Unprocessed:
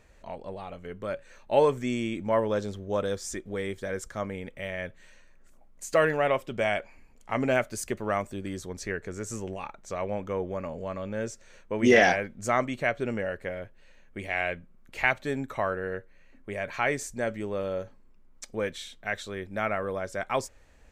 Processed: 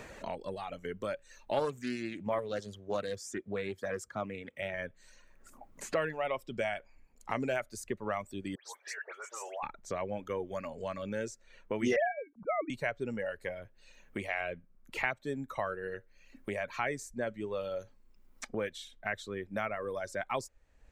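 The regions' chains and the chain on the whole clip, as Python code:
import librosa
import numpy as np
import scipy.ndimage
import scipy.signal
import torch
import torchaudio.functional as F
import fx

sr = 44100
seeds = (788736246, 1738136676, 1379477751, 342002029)

y = fx.chain(x, sr, fx.highpass(hz=69.0, slope=24),
    fx.doppler_dist(depth_ms=0.29), at=(1.52, 4.74))
y = fx.chain(y, sr, fx.over_compress(threshold_db=-35.0, ratio=-0.5),
    fx.highpass(hz=680.0, slope=24),
    fx.dispersion(late='highs', ms=112.0, hz=2500.0), at=(8.55, 9.63))
y = fx.chain(y, sr, fx.sine_speech(),
    fx.tilt_eq(slope=-2.0), at=(11.96, 12.7))
y = fx.dereverb_blind(y, sr, rt60_s=1.5)
y = fx.band_squash(y, sr, depth_pct=70)
y = y * librosa.db_to_amplitude(-5.0)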